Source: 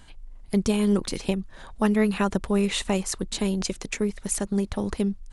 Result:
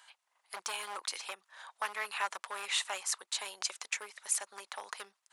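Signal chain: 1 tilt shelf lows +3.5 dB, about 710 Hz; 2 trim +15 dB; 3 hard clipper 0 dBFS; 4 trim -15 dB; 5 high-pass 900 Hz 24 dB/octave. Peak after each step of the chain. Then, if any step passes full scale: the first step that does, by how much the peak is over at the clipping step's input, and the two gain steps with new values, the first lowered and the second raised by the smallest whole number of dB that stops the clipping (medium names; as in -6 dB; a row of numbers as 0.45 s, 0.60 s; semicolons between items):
-8.0 dBFS, +7.0 dBFS, 0.0 dBFS, -15.0 dBFS, -18.0 dBFS; step 2, 7.0 dB; step 2 +8 dB, step 4 -8 dB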